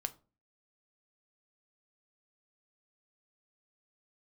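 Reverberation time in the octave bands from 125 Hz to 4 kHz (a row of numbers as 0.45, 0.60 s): 0.50, 0.50, 0.40, 0.30, 0.25, 0.20 s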